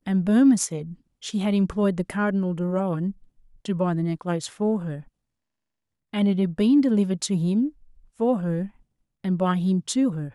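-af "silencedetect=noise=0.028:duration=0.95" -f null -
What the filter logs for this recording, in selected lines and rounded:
silence_start: 4.99
silence_end: 6.14 | silence_duration: 1.14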